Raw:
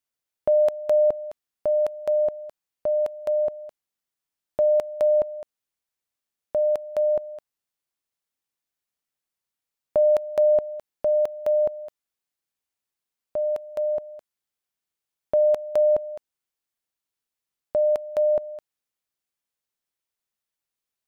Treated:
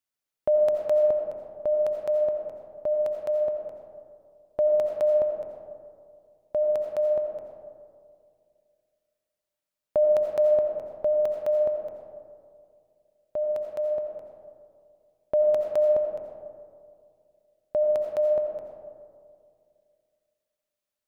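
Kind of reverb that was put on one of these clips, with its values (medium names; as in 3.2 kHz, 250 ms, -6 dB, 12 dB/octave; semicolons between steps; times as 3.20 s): algorithmic reverb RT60 2.3 s, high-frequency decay 0.3×, pre-delay 45 ms, DRR 2.5 dB; trim -2.5 dB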